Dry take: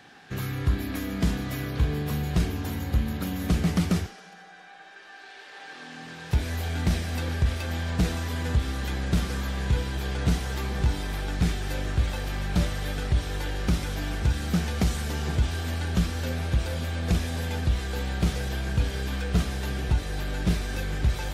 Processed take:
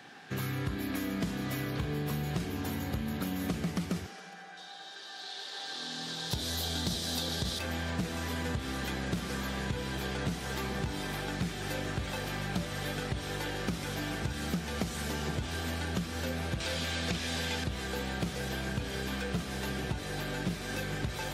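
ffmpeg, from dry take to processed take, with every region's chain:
-filter_complex "[0:a]asettb=1/sr,asplit=3[s0][s1][s2];[s0]atrim=end=4.574[s3];[s1]atrim=start=4.57:end=7.59,asetpts=PTS-STARTPTS,afade=t=in:d=0.004:c=qsin,afade=t=out:st=3.016:d=0.004:c=qsin,highshelf=f=3000:t=q:w=3:g=7,aecho=1:1:584:0.398,atrim=end_sample=133182[s4];[s2]atrim=start=7.586[s5];[s3][s4]acrossfade=d=0.004:c1=hsin:c2=qsin[s6];[s6][s5]acrossfade=d=0.004:c1=qsin:c2=hsin,asettb=1/sr,asplit=3[s7][s8][s9];[s7]atrim=end=16.604[s10];[s8]atrim=start=16.6:end=17.64,asetpts=PTS-STARTPTS,afade=t=in:d=0.004:c=qsin,afade=t=out:st=1.036:d=0.004:c=qsin,acrossover=split=4100[s11][s12];[s12]acompressor=threshold=0.00355:ratio=4:attack=1:release=60[s13];[s11][s13]amix=inputs=2:normalize=0,equalizer=f=5700:w=0.39:g=12[s14];[s9]atrim=start=17.636[s15];[s10][s14]acrossfade=d=0.004:c1=hsin:c2=qsin[s16];[s16][s15]acrossfade=d=0.004:c1=qsin:c2=hsin,highpass=120,acompressor=threshold=0.0316:ratio=5"

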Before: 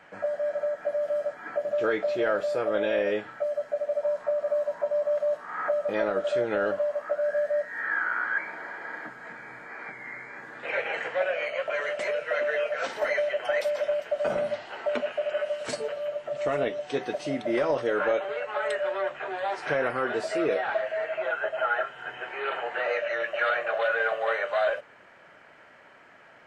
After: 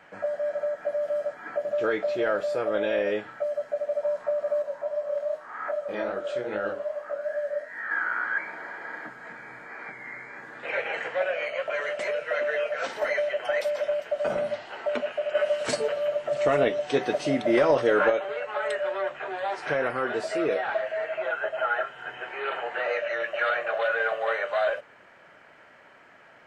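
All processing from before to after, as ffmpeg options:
-filter_complex "[0:a]asettb=1/sr,asplit=3[s0][s1][s2];[s0]atrim=end=4.624[s3];[s1]atrim=start=4.62:end=7.91,asetpts=PTS-STARTPTS,afade=t=in:d=0.004:c=qsin,afade=t=out:st=3.286:d=0.004:c=qsin,bandreject=f=60:t=h:w=6,bandreject=f=120:t=h:w=6,bandreject=f=180:t=h:w=6,bandreject=f=240:t=h:w=6,bandreject=f=300:t=h:w=6,bandreject=f=360:t=h:w=6,bandreject=f=420:t=h:w=6,bandreject=f=480:t=h:w=6,bandreject=f=540:t=h:w=6,bandreject=f=600:t=h:w=6,flanger=delay=18:depth=6.7:speed=2.5[s4];[s2]atrim=start=7.906[s5];[s3][s4]acrossfade=d=0.004:c1=hsin:c2=qsin[s6];[s6][s5]acrossfade=d=0.004:c1=qsin:c2=hsin,asettb=1/sr,asplit=3[s7][s8][s9];[s7]atrim=end=15.354[s10];[s8]atrim=start=15.35:end=18.1,asetpts=PTS-STARTPTS,afade=t=in:d=0.004:c=qsin,afade=t=out:st=2.746:d=0.004:c=qsin,acontrast=23,aecho=1:1:634:0.075,atrim=end_sample=121275[s11];[s9]atrim=start=18.096[s12];[s10][s11]acrossfade=d=0.004:c1=hsin:c2=qsin[s13];[s13][s12]acrossfade=d=0.004:c1=qsin:c2=hsin"

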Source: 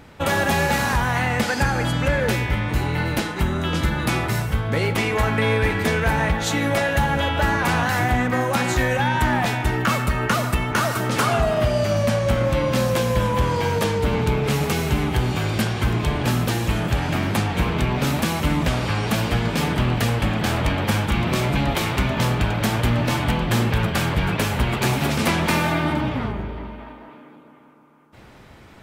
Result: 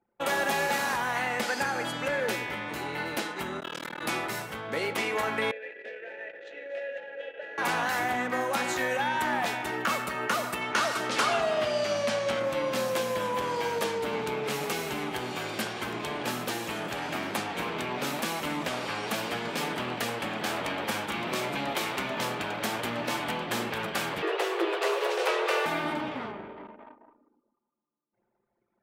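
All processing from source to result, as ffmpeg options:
-filter_complex "[0:a]asettb=1/sr,asplit=3[s0][s1][s2];[s0]atrim=end=3.604[s3];[s1]atrim=start=3.6:end=4.02,asetpts=PTS-STARTPTS,afade=t=in:d=0.004:c=qsin,afade=t=out:st=0.416:d=0.004:c=qsin,highpass=f=190:p=1,acrusher=bits=9:dc=4:mix=0:aa=0.000001,tremolo=f=39:d=0.974[s4];[s2]atrim=start=4.016[s5];[s3][s4]acrossfade=d=0.004:c1=hsin:c2=qsin[s6];[s6][s5]acrossfade=d=0.004:c1=qsin:c2=hsin,asettb=1/sr,asplit=3[s7][s8][s9];[s7]atrim=end=5.514[s10];[s8]atrim=start=5.51:end=7.58,asetpts=PTS-STARTPTS,afade=t=in:d=0.004:c=qsin,afade=t=out:st=2.066:d=0.004:c=qsin,asplit=3[s11][s12][s13];[s11]bandpass=f=530:t=q:w=8,volume=1[s14];[s12]bandpass=f=1840:t=q:w=8,volume=0.501[s15];[s13]bandpass=f=2480:t=q:w=8,volume=0.355[s16];[s14][s15][s16]amix=inputs=3:normalize=0,lowshelf=f=350:g=-7,asplit=8[s17][s18][s19][s20][s21][s22][s23][s24];[s18]adelay=242,afreqshift=-43,volume=0.251[s25];[s19]adelay=484,afreqshift=-86,volume=0.153[s26];[s20]adelay=726,afreqshift=-129,volume=0.0933[s27];[s21]adelay=968,afreqshift=-172,volume=0.0569[s28];[s22]adelay=1210,afreqshift=-215,volume=0.0347[s29];[s23]adelay=1452,afreqshift=-258,volume=0.0211[s30];[s24]adelay=1694,afreqshift=-301,volume=0.0129[s31];[s17][s25][s26][s27][s28][s29][s30][s31]amix=inputs=8:normalize=0,atrim=end_sample=91287[s32];[s9]atrim=start=7.576[s33];[s10][s32]acrossfade=d=0.004:c1=hsin:c2=qsin[s34];[s34][s33]acrossfade=d=0.004:c1=qsin:c2=hsin,asettb=1/sr,asplit=3[s35][s36][s37];[s35]atrim=end=10.614[s38];[s36]atrim=start=10.61:end=12.4,asetpts=PTS-STARTPTS,afade=t=in:d=0.004:c=qsin,afade=t=out:st=1.786:d=0.004:c=qsin,lowpass=4400,aemphasis=mode=production:type=75kf[s39];[s37]atrim=start=12.396[s40];[s38][s39]acrossfade=d=0.004:c1=hsin:c2=qsin[s41];[s41][s40]acrossfade=d=0.004:c1=qsin:c2=hsin,asettb=1/sr,asplit=3[s42][s43][s44];[s42]atrim=end=24.224[s45];[s43]atrim=start=24.22:end=25.66,asetpts=PTS-STARTPTS,afade=t=in:d=0.004:c=qsin,afade=t=out:st=1.436:d=0.004:c=qsin,lowpass=f=3700:p=1,afreqshift=280[s46];[s44]atrim=start=25.656[s47];[s45][s46]acrossfade=d=0.004:c1=hsin:c2=qsin[s48];[s48][s47]acrossfade=d=0.004:c1=qsin:c2=hsin,highpass=320,anlmdn=1,volume=0.501"

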